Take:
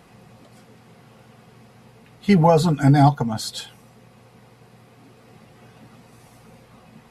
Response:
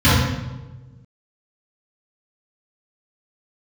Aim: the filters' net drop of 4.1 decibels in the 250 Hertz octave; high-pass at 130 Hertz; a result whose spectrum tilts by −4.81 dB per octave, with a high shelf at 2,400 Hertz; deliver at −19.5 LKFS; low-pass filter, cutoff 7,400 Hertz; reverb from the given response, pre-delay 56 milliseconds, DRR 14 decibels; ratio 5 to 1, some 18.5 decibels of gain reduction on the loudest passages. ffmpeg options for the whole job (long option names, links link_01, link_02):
-filter_complex "[0:a]highpass=130,lowpass=7400,equalizer=frequency=250:width_type=o:gain=-5,highshelf=frequency=2400:gain=7,acompressor=threshold=-33dB:ratio=5,asplit=2[link_01][link_02];[1:a]atrim=start_sample=2205,adelay=56[link_03];[link_02][link_03]afir=irnorm=-1:irlink=0,volume=-39.5dB[link_04];[link_01][link_04]amix=inputs=2:normalize=0,volume=18dB"